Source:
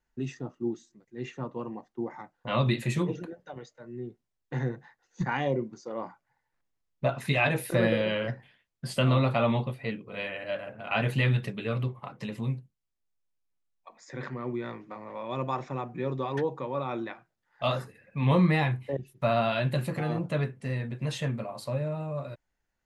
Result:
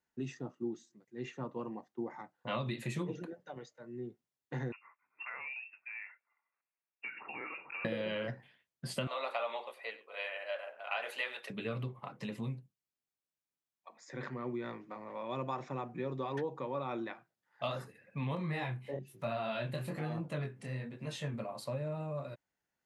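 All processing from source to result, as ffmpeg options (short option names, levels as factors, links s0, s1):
-filter_complex "[0:a]asettb=1/sr,asplit=3[s0][s1][s2];[s0]atrim=end=4.724[s3];[s1]atrim=start=4.72:end=7.85,asetpts=PTS-STARTPTS,afade=t=in:d=0.004:c=qsin,afade=t=out:st=3.126:d=0.004:c=qsin,highpass=f=530:p=1,acompressor=threshold=0.0158:ratio=4:attack=3.2:release=140:knee=1:detection=peak,lowpass=f=2500:t=q:w=0.5098,lowpass=f=2500:t=q:w=0.6013,lowpass=f=2500:t=q:w=0.9,lowpass=f=2500:t=q:w=2.563,afreqshift=-2900[s4];[s2]atrim=start=7.846[s5];[s3][s4]acrossfade=d=0.004:c1=hsin:c2=qsin[s6];[s6][s5]acrossfade=d=0.004:c1=qsin:c2=hsin,asettb=1/sr,asplit=3[s7][s8][s9];[s7]atrim=end=9.074[s10];[s8]atrim=start=9.07:end=11.5,asetpts=PTS-STARTPTS,afade=t=in:d=0.004:c=qsin,afade=t=out:st=2.426:d=0.004:c=qsin,highpass=f=540:w=0.5412,highpass=f=540:w=1.3066,aecho=1:1:95:0.133,atrim=end_sample=107163[s11];[s9]atrim=start=11.496[s12];[s10][s11]acrossfade=d=0.004:c1=hsin:c2=qsin[s13];[s13][s12]acrossfade=d=0.004:c1=qsin:c2=hsin,asettb=1/sr,asplit=3[s14][s15][s16];[s14]atrim=end=18.354[s17];[s15]atrim=start=18.35:end=21.34,asetpts=PTS-STARTPTS,afade=t=in:d=0.004:c=qsin,afade=t=out:st=2.986:d=0.004:c=qsin,acompressor=mode=upward:threshold=0.02:ratio=2.5:attack=3.2:release=140:knee=2.83:detection=peak,flanger=delay=18:depth=7.3:speed=1.1[s18];[s16]atrim=start=21.336[s19];[s17][s18]acrossfade=d=0.004:c1=hsin:c2=qsin[s20];[s20][s19]acrossfade=d=0.004:c1=qsin:c2=hsin,acompressor=threshold=0.0398:ratio=6,highpass=120,volume=0.631"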